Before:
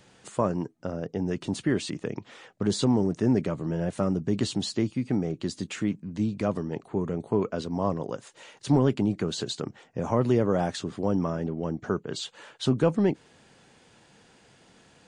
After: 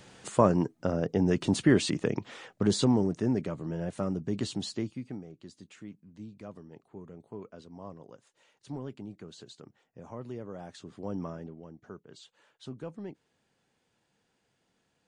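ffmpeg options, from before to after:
-af "volume=12dB,afade=t=out:st=2.05:d=1.29:silence=0.354813,afade=t=out:st=4.69:d=0.56:silence=0.251189,afade=t=in:st=10.63:d=0.6:silence=0.375837,afade=t=out:st=11.23:d=0.44:silence=0.354813"

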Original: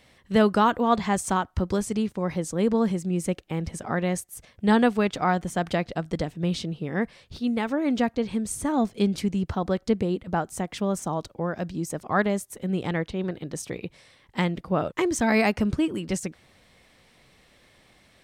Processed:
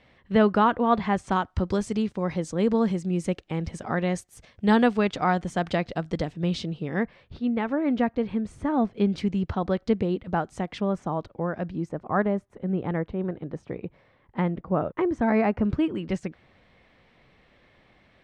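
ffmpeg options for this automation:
-af "asetnsamples=n=441:p=0,asendcmd='1.32 lowpass f 5800;7.03 lowpass f 2300;9.1 lowpass f 3900;10.81 lowpass f 2300;11.89 lowpass f 1400;15.65 lowpass f 2700',lowpass=2.9k"

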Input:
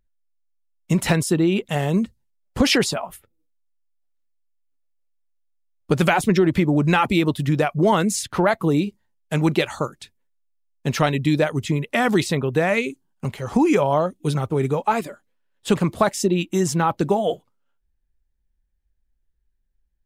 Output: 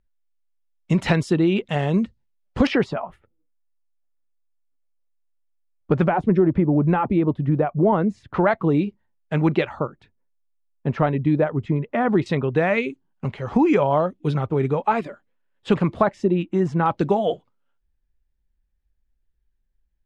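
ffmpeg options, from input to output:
-af "asetnsamples=n=441:p=0,asendcmd='2.67 lowpass f 1700;6.04 lowpass f 1000;8.34 lowpass f 2300;9.69 lowpass f 1300;12.26 lowpass f 2900;16.02 lowpass f 1700;16.86 lowpass f 4000',lowpass=3.9k"

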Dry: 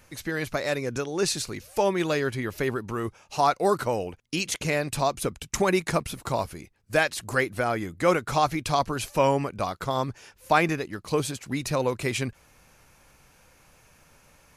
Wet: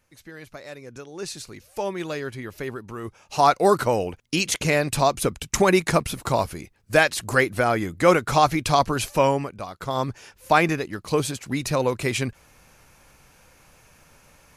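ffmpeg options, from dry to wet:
-af "volume=15dB,afade=t=in:st=0.79:d=1.05:silence=0.421697,afade=t=in:st=3.01:d=0.47:silence=0.334965,afade=t=out:st=9.01:d=0.66:silence=0.251189,afade=t=in:st=9.67:d=0.39:silence=0.316228"

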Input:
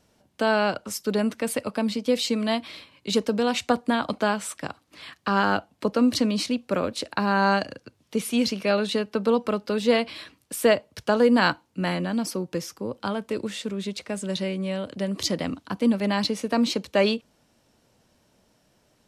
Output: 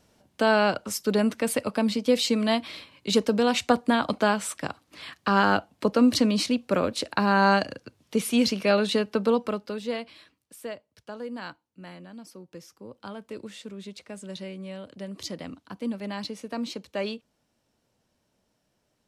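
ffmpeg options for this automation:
-af "volume=9dB,afade=t=out:st=9.1:d=0.72:silence=0.298538,afade=t=out:st=9.82:d=0.88:silence=0.398107,afade=t=in:st=12.27:d=1.09:silence=0.398107"

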